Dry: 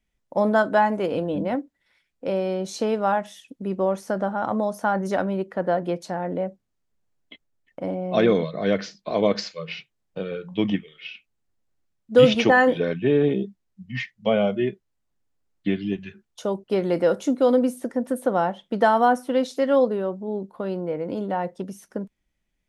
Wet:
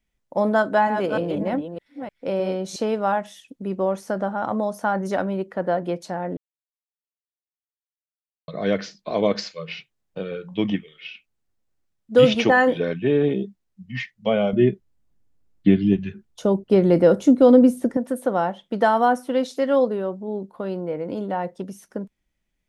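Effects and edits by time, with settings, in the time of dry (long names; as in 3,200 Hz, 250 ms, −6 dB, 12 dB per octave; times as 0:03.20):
0:00.57–0:02.76: delay that plays each chunk backwards 304 ms, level −7.5 dB
0:06.37–0:08.48: silence
0:14.53–0:17.97: low-shelf EQ 410 Hz +11.5 dB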